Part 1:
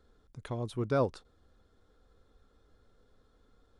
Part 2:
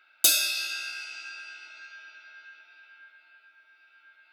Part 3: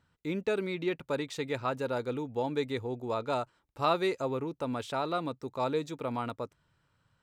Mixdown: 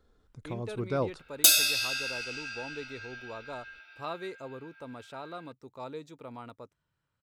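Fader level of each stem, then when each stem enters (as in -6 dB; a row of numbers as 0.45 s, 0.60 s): -1.5 dB, +1.0 dB, -10.0 dB; 0.00 s, 1.20 s, 0.20 s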